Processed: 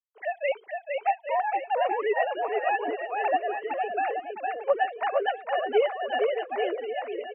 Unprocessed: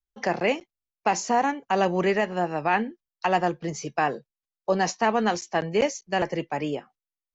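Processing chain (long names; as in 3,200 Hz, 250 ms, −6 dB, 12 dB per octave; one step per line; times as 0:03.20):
three sine waves on the formant tracks
reverb reduction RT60 0.84 s
bouncing-ball delay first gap 460 ms, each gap 0.8×, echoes 5
level −3.5 dB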